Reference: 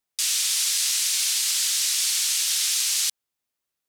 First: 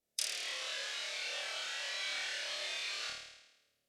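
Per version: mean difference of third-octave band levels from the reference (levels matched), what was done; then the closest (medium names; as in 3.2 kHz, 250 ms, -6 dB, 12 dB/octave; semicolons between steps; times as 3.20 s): 13.0 dB: low-pass that closes with the level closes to 1.8 kHz, closed at -24.5 dBFS; resonant low shelf 750 Hz +7.5 dB, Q 3; flutter echo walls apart 4.6 m, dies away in 1 s; spectral noise reduction 6 dB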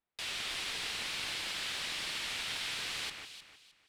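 17.0 dB: peaking EQ 7.8 kHz +6.5 dB 1.5 oct; sine folder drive 4 dB, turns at -5.5 dBFS; distance through air 490 m; echo whose repeats swap between lows and highs 154 ms, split 2.5 kHz, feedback 52%, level -4.5 dB; trim -7 dB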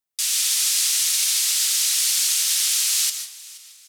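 1.0 dB: treble shelf 8.7 kHz +5.5 dB; frequency-shifting echo 476 ms, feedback 40%, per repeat -59 Hz, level -15.5 dB; algorithmic reverb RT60 0.51 s, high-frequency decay 0.45×, pre-delay 105 ms, DRR 4 dB; upward expansion 1.5:1, over -30 dBFS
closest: third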